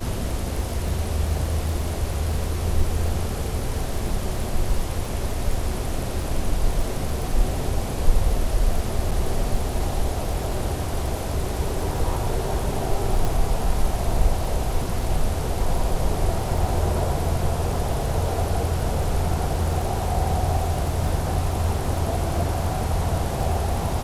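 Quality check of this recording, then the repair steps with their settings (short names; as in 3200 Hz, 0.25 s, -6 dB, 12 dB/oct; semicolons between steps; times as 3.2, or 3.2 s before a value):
crackle 29/s -29 dBFS
9.11–9.12 gap 6.2 ms
13.25 pop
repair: de-click; interpolate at 9.11, 6.2 ms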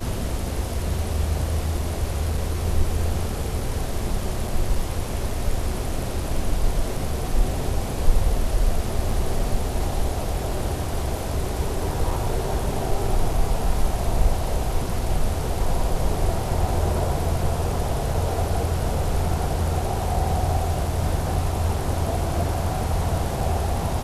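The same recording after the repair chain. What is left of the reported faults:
none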